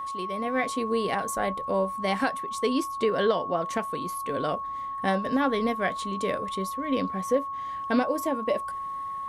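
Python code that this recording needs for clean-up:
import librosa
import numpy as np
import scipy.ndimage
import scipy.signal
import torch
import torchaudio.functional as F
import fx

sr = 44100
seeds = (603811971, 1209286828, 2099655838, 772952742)

y = fx.fix_declick_ar(x, sr, threshold=6.5)
y = fx.notch(y, sr, hz=1100.0, q=30.0)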